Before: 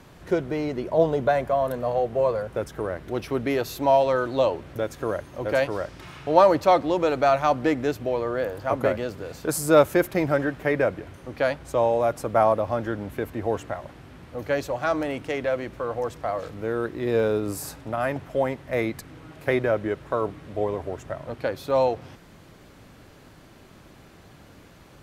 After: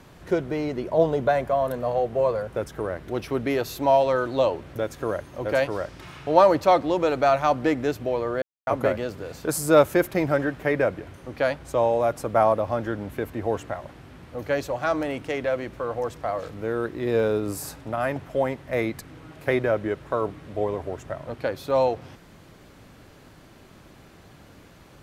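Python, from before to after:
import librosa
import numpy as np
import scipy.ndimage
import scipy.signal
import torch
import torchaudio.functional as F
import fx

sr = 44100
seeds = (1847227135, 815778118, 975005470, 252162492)

y = fx.edit(x, sr, fx.silence(start_s=8.42, length_s=0.25), tone=tone)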